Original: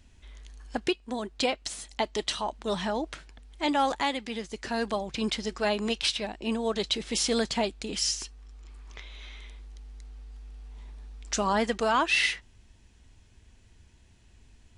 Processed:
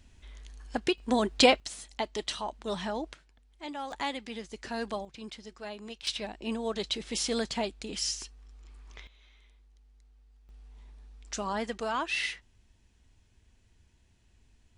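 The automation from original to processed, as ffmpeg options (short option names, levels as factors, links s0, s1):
-af "asetnsamples=n=441:p=0,asendcmd='0.98 volume volume 7dB;1.6 volume volume -4dB;3.13 volume volume -13dB;3.92 volume volume -5dB;5.05 volume volume -14dB;6.07 volume volume -4dB;9.07 volume volume -15.5dB;10.49 volume volume -7dB',volume=0.944"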